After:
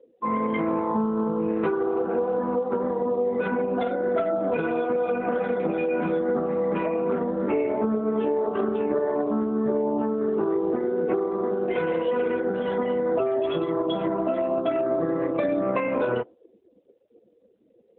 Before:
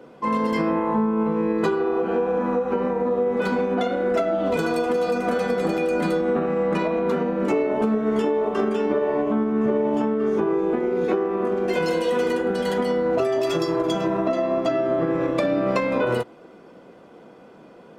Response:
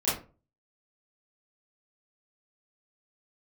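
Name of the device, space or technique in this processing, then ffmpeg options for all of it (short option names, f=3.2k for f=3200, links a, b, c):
mobile call with aggressive noise cancelling: -af "highpass=f=160:p=1,afftdn=nr=36:nf=-35,volume=-1.5dB" -ar 8000 -c:a libopencore_amrnb -b:a 12200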